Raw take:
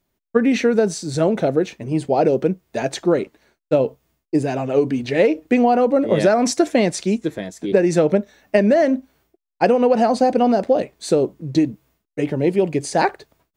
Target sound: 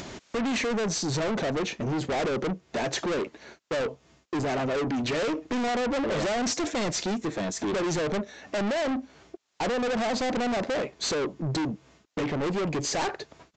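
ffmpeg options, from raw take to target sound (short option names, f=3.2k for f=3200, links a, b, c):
-af "highpass=f=130:p=1,acompressor=mode=upward:threshold=-19dB:ratio=2.5,aresample=16000,asoftclip=type=tanh:threshold=-30.5dB,aresample=44100,volume=4.5dB"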